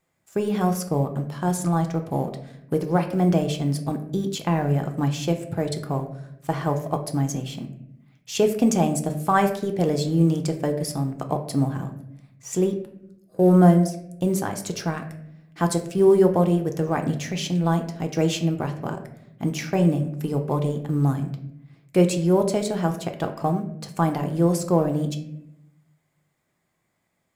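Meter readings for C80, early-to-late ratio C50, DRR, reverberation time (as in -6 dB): 13.0 dB, 10.0 dB, 4.5 dB, 0.75 s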